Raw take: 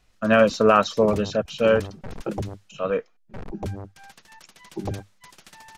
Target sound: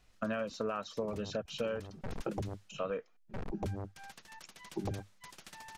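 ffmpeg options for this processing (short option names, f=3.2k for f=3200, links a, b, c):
-af "acompressor=threshold=-29dB:ratio=12,volume=-3.5dB"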